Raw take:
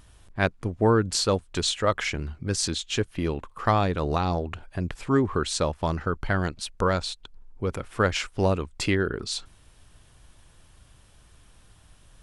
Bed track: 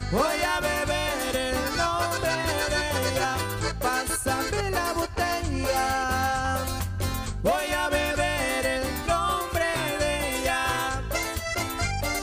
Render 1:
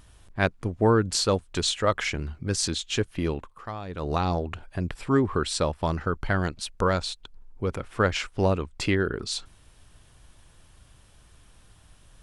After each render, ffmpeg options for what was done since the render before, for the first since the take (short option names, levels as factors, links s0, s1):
-filter_complex "[0:a]asettb=1/sr,asplit=3[s0][s1][s2];[s0]atrim=end=4.874[s3];[s1]atrim=start=4.87:end=5.94,asetpts=PTS-STARTPTS,afade=t=in:d=0.004:c=qsin,afade=t=out:st=1.066:d=0.004:c=qsin,bandreject=f=6500:w=8.7[s4];[s2]atrim=start=5.936[s5];[s3][s4]acrossfade=d=0.004:c1=hsin:c2=qsin[s6];[s6][s5]acrossfade=d=0.004:c1=qsin:c2=hsin,asettb=1/sr,asplit=3[s7][s8][s9];[s7]atrim=end=7.704[s10];[s8]atrim=start=7.7:end=8.97,asetpts=PTS-STARTPTS,afade=t=in:d=0.004:c=qsin,afade=t=out:st=1.266:d=0.004:c=qsin,highshelf=f=6900:g=-6[s11];[s9]atrim=start=8.966[s12];[s10][s11]acrossfade=d=0.004:c1=hsin:c2=qsin[s13];[s13][s12]acrossfade=d=0.004:c1=qsin:c2=hsin,asplit=3[s14][s15][s16];[s14]atrim=end=3.67,asetpts=PTS-STARTPTS,afade=t=out:st=3.33:d=0.34:silence=0.199526[s17];[s15]atrim=start=3.67:end=3.85,asetpts=PTS-STARTPTS,volume=0.2[s18];[s16]atrim=start=3.85,asetpts=PTS-STARTPTS,afade=t=in:d=0.34:silence=0.199526[s19];[s17][s18][s19]concat=n=3:v=0:a=1"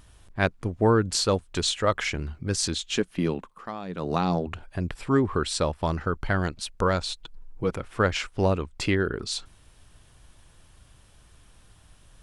-filter_complex "[0:a]asettb=1/sr,asplit=3[s0][s1][s2];[s0]atrim=end=2.964[s3];[s1]atrim=start=2.96:end=4.47,asetpts=PTS-STARTPTS,afade=t=in:d=0.004:c=qsin,afade=t=out:st=1.506:d=0.004:c=qsin,lowshelf=f=140:t=q:w=3:g=-7[s4];[s2]atrim=start=4.466[s5];[s3][s4]acrossfade=d=0.004:c1=hsin:c2=qsin[s6];[s6][s5]acrossfade=d=0.004:c1=qsin:c2=hsin,asettb=1/sr,asplit=3[s7][s8][s9];[s7]atrim=end=7.094[s10];[s8]atrim=start=7.09:end=7.71,asetpts=PTS-STARTPTS,afade=t=in:d=0.004:c=qsin,afade=t=out:st=0.616:d=0.004:c=qsin,aecho=1:1:6.2:0.73,atrim=end_sample=27342[s11];[s9]atrim=start=7.706[s12];[s10][s11]acrossfade=d=0.004:c1=hsin:c2=qsin[s13];[s13][s12]acrossfade=d=0.004:c1=qsin:c2=hsin"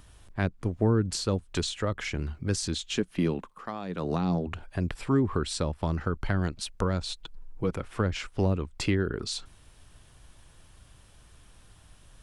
-filter_complex "[0:a]acrossover=split=340[s0][s1];[s1]acompressor=threshold=0.0316:ratio=10[s2];[s0][s2]amix=inputs=2:normalize=0"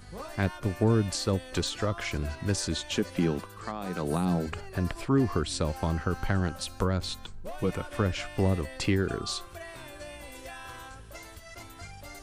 -filter_complex "[1:a]volume=0.133[s0];[0:a][s0]amix=inputs=2:normalize=0"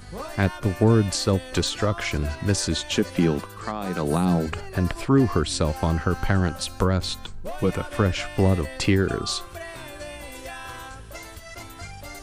-af "volume=2"